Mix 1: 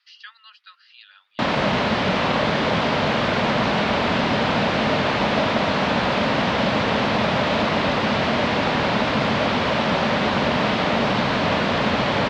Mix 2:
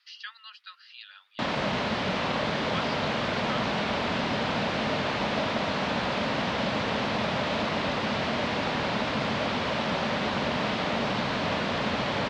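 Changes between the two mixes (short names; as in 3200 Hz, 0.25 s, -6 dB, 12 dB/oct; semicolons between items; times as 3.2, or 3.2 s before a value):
background -8.0 dB; master: add high shelf 4900 Hz +5 dB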